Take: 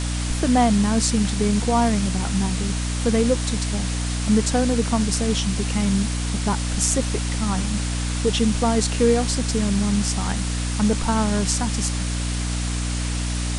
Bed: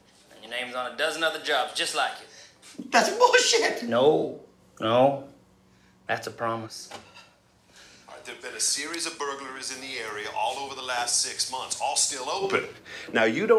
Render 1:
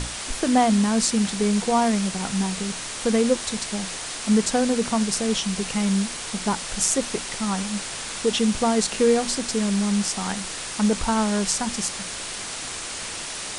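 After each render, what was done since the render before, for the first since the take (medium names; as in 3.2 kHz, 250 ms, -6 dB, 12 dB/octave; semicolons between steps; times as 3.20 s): hum notches 60/120/180/240/300 Hz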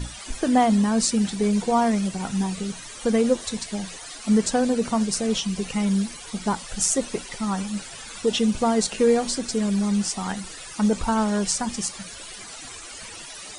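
noise reduction 15 dB, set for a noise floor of -33 dBFS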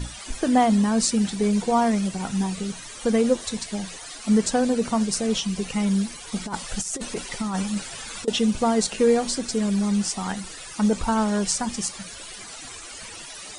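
6.32–8.28 s: compressor with a negative ratio -26 dBFS, ratio -0.5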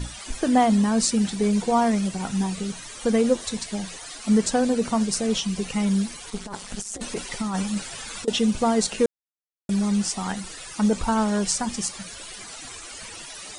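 6.30–7.01 s: AM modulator 210 Hz, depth 90%; 9.06–9.69 s: mute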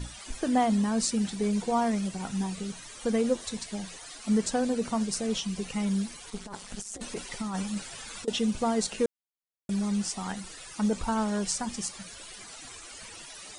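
trim -6 dB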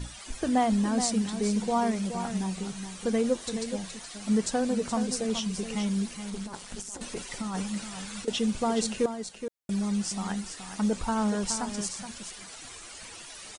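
delay 422 ms -9 dB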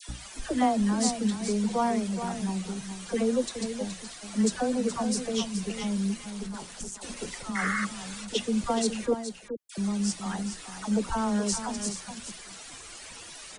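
7.53–7.83 s: painted sound noise 1.1–2.2 kHz -30 dBFS; phase dispersion lows, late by 90 ms, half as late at 970 Hz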